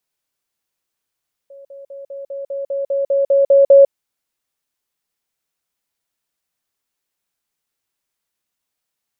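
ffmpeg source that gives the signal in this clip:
ffmpeg -f lavfi -i "aevalsrc='pow(10,(-36.5+3*floor(t/0.2))/20)*sin(2*PI*554*t)*clip(min(mod(t,0.2),0.15-mod(t,0.2))/0.005,0,1)':duration=2.4:sample_rate=44100" out.wav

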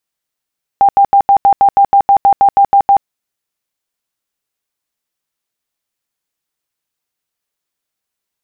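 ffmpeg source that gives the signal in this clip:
ffmpeg -f lavfi -i "aevalsrc='0.631*sin(2*PI*797*mod(t,0.16))*lt(mod(t,0.16),62/797)':duration=2.24:sample_rate=44100" out.wav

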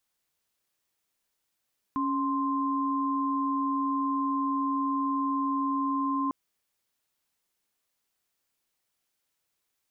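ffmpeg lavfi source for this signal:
ffmpeg -f lavfi -i "aevalsrc='0.0398*(sin(2*PI*277.18*t)+sin(2*PI*1046.5*t))':duration=4.35:sample_rate=44100" out.wav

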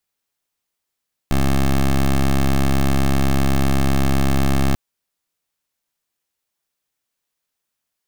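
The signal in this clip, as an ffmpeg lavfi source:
ffmpeg -f lavfi -i "aevalsrc='0.168*(2*lt(mod(67.9*t,1),0.14)-1)':duration=3.44:sample_rate=44100" out.wav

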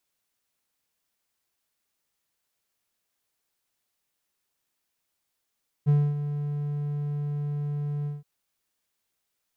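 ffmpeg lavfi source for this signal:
ffmpeg -f lavfi -i "aevalsrc='0.2*(1-4*abs(mod(146*t+0.25,1)-0.5))':duration=2.372:sample_rate=44100,afade=type=in:duration=0.029,afade=type=out:start_time=0.029:duration=0.254:silence=0.282,afade=type=out:start_time=2.2:duration=0.172" out.wav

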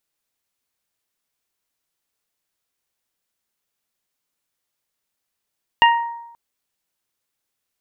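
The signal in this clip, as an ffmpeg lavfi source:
ffmpeg -f lavfi -i "aevalsrc='0.376*pow(10,-3*t/0.9)*sin(2*PI*935*t)+0.224*pow(10,-3*t/0.53)*sin(2*PI*1870*t)+0.237*pow(10,-3*t/0.27)*sin(2*PI*2805*t)':duration=0.53:sample_rate=44100" out.wav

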